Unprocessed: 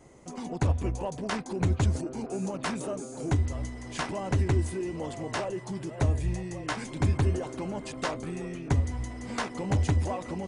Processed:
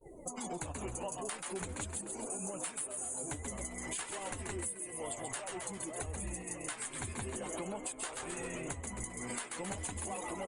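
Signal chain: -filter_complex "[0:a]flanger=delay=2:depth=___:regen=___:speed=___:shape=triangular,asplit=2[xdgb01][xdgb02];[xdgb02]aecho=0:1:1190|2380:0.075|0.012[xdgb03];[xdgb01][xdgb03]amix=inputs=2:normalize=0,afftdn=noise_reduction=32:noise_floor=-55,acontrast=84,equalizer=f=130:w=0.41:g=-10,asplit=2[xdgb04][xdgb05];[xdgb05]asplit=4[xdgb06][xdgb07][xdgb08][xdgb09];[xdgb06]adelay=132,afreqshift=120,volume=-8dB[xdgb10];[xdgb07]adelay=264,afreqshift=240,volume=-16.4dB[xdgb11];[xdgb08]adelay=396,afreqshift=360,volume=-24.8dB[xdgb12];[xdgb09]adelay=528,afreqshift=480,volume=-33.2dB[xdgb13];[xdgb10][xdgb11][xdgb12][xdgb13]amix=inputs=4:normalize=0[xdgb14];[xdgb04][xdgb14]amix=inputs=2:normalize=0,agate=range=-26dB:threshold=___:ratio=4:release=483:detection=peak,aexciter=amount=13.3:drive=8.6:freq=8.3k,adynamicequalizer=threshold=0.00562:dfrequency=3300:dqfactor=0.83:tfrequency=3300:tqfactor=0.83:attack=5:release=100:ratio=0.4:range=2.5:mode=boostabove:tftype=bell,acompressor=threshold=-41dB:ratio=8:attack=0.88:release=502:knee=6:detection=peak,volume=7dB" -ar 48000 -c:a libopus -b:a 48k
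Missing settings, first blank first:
6.8, 38, 0.49, -56dB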